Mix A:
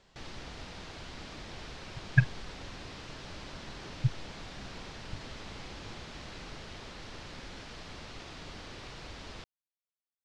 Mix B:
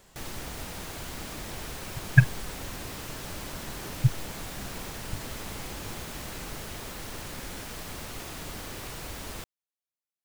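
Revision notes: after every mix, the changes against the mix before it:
master: remove ladder low-pass 6000 Hz, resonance 25%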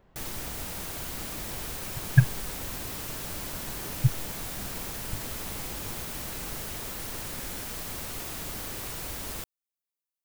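speech: add tape spacing loss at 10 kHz 45 dB; master: add high shelf 8800 Hz +9.5 dB

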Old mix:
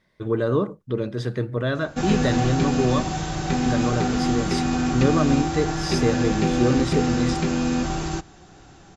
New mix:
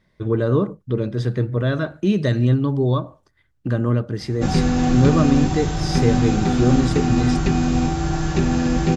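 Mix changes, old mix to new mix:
background: entry +2.45 s; master: add low shelf 220 Hz +8.5 dB

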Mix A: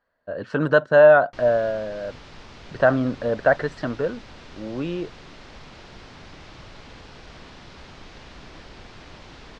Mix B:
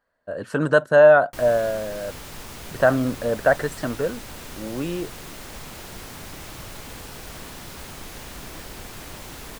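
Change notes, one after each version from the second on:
background +4.5 dB; master: remove LPF 5100 Hz 24 dB/oct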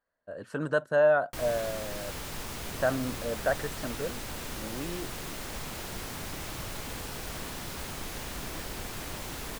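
speech -10.0 dB

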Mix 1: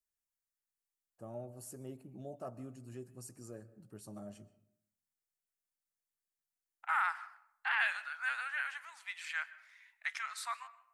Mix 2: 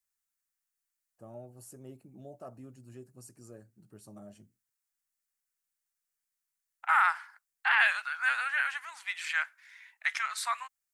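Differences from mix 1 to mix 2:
second voice +9.5 dB; reverb: off

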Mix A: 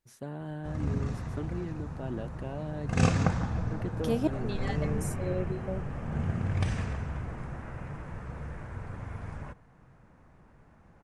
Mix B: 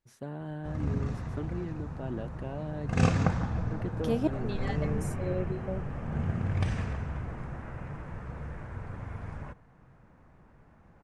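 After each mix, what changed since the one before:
master: add high shelf 5800 Hz -7 dB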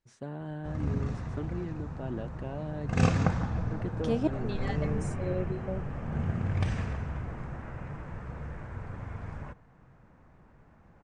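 master: add steep low-pass 9000 Hz 48 dB/oct

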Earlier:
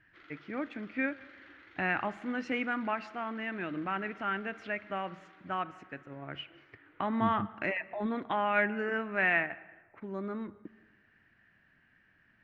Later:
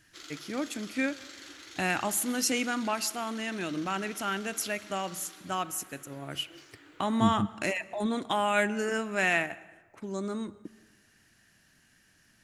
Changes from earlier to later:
first voice -4.0 dB; master: remove ladder low-pass 2500 Hz, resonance 35%

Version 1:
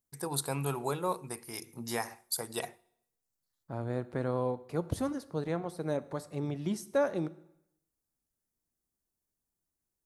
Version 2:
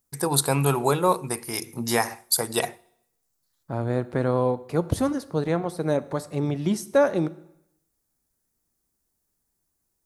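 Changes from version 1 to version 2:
first voice +11.5 dB; second voice +9.0 dB

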